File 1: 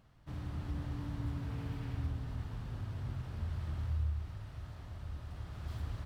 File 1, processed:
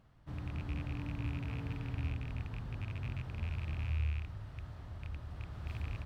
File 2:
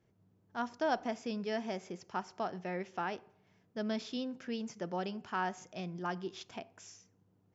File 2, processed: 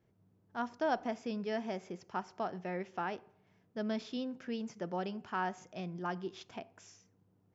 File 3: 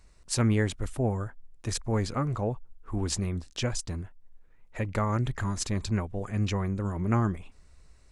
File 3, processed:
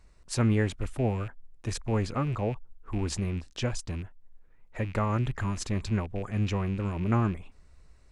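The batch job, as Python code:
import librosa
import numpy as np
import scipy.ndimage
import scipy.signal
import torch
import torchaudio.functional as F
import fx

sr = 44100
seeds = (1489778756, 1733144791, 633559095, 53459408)

y = fx.rattle_buzz(x, sr, strikes_db=-36.0, level_db=-35.0)
y = fx.high_shelf(y, sr, hz=3900.0, db=-6.5)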